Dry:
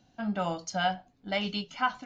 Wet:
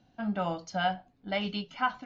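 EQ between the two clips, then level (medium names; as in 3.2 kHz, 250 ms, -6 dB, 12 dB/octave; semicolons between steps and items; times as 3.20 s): distance through air 130 m; 0.0 dB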